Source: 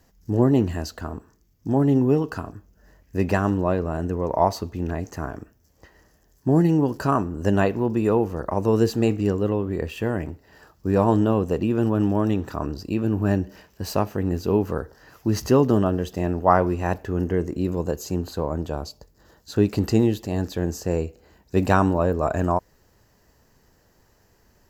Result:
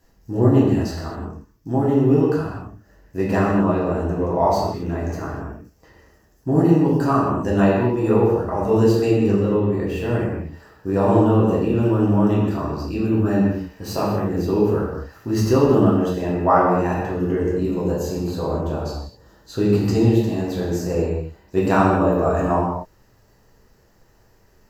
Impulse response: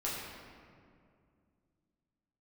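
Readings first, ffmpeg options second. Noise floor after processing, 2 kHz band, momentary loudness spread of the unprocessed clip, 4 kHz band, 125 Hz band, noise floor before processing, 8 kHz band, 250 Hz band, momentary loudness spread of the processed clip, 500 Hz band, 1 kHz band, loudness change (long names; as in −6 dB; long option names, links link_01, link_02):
−56 dBFS, +2.0 dB, 12 LU, +1.5 dB, +3.5 dB, −61 dBFS, can't be measured, +3.5 dB, 13 LU, +4.0 dB, +3.5 dB, +3.5 dB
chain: -filter_complex "[1:a]atrim=start_sample=2205,afade=type=out:start_time=0.31:duration=0.01,atrim=end_sample=14112[link_01];[0:a][link_01]afir=irnorm=-1:irlink=0,volume=-1dB"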